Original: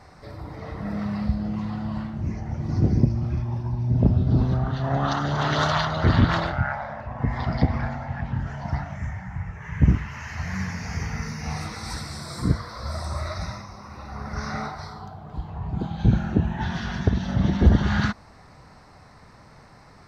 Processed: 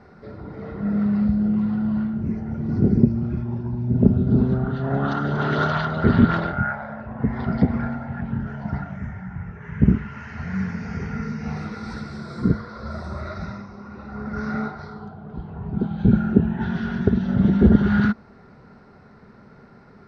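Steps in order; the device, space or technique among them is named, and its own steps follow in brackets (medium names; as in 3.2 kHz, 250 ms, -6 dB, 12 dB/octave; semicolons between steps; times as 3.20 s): inside a cardboard box (low-pass 3.9 kHz 12 dB/octave; small resonant body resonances 220/390/1400 Hz, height 14 dB, ringing for 35 ms); trim -5 dB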